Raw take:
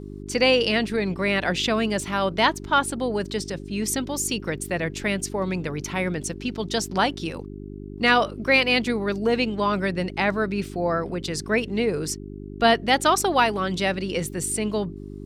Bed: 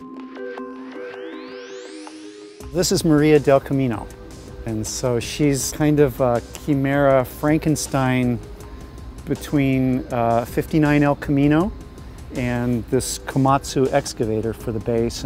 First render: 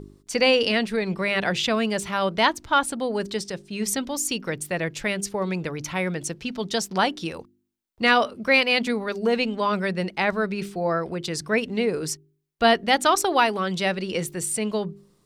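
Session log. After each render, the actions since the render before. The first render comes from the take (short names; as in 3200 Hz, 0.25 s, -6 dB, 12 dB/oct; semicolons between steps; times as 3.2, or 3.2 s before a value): de-hum 50 Hz, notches 8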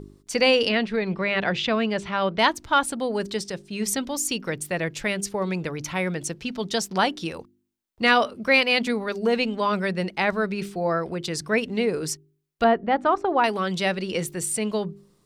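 0.69–2.39 LPF 3900 Hz; 12.64–13.44 LPF 1300 Hz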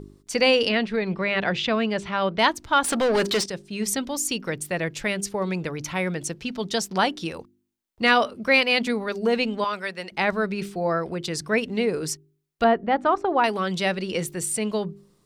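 2.84–3.46 overdrive pedal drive 23 dB, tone 4800 Hz, clips at -13.5 dBFS; 9.64–10.12 HPF 1000 Hz 6 dB/oct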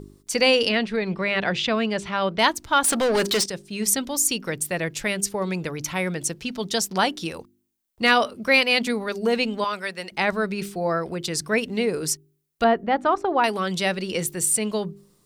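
high shelf 7000 Hz +10 dB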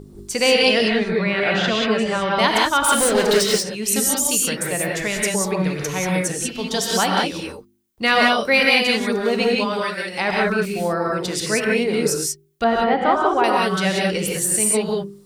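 non-linear reverb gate 0.21 s rising, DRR -2 dB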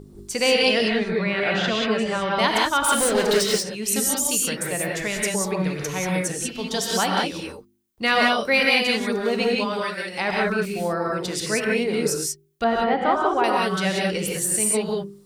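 gain -3 dB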